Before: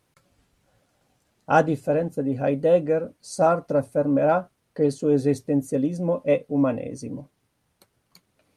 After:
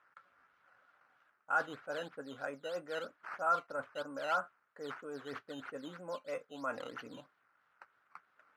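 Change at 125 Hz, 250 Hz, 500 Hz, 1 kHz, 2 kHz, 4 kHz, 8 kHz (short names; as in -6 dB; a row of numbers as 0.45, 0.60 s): -29.5 dB, -25.5 dB, -20.0 dB, -11.0 dB, -5.0 dB, n/a, -17.5 dB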